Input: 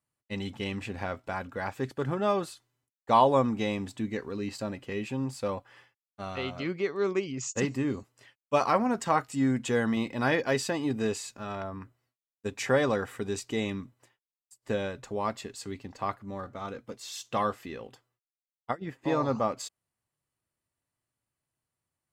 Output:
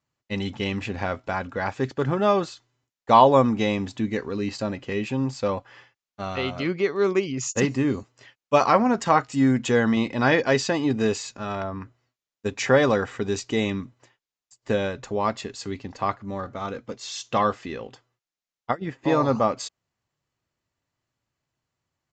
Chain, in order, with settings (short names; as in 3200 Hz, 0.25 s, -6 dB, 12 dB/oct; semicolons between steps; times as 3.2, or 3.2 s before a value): downsampling 16000 Hz; gain +6.5 dB